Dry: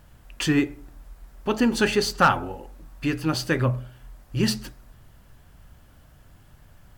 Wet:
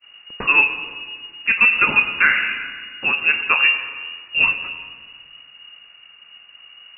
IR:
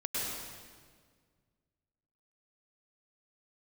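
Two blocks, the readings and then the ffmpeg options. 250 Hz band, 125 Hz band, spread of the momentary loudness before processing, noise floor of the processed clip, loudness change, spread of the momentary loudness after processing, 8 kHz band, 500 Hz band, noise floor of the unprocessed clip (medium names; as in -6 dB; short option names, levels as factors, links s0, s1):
-13.5 dB, under -15 dB, 13 LU, -48 dBFS, +7.5 dB, 16 LU, under -40 dB, -9.5 dB, -53 dBFS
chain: -filter_complex "[0:a]bandreject=f=73.61:t=h:w=4,bandreject=f=147.22:t=h:w=4,bandreject=f=220.83:t=h:w=4,bandreject=f=294.44:t=h:w=4,bandreject=f=368.05:t=h:w=4,bandreject=f=441.66:t=h:w=4,bandreject=f=515.27:t=h:w=4,bandreject=f=588.88:t=h:w=4,bandreject=f=662.49:t=h:w=4,bandreject=f=736.1:t=h:w=4,bandreject=f=809.71:t=h:w=4,bandreject=f=883.32:t=h:w=4,bandreject=f=956.93:t=h:w=4,bandreject=f=1030.54:t=h:w=4,bandreject=f=1104.15:t=h:w=4,bandreject=f=1177.76:t=h:w=4,bandreject=f=1251.37:t=h:w=4,bandreject=f=1324.98:t=h:w=4,bandreject=f=1398.59:t=h:w=4,bandreject=f=1472.2:t=h:w=4,bandreject=f=1545.81:t=h:w=4,bandreject=f=1619.42:t=h:w=4,bandreject=f=1693.03:t=h:w=4,bandreject=f=1766.64:t=h:w=4,bandreject=f=1840.25:t=h:w=4,bandreject=f=1913.86:t=h:w=4,bandreject=f=1987.47:t=h:w=4,bandreject=f=2061.08:t=h:w=4,bandreject=f=2134.69:t=h:w=4,bandreject=f=2208.3:t=h:w=4,bandreject=f=2281.91:t=h:w=4,bandreject=f=2355.52:t=h:w=4,lowpass=f=2500:t=q:w=0.5098,lowpass=f=2500:t=q:w=0.6013,lowpass=f=2500:t=q:w=0.9,lowpass=f=2500:t=q:w=2.563,afreqshift=-2900,agate=range=0.0224:threshold=0.00316:ratio=3:detection=peak,asplit=2[s0][s1];[1:a]atrim=start_sample=2205,lowpass=3200[s2];[s1][s2]afir=irnorm=-1:irlink=0,volume=0.188[s3];[s0][s3]amix=inputs=2:normalize=0,alimiter=level_in=2.66:limit=0.891:release=50:level=0:latency=1,volume=0.75"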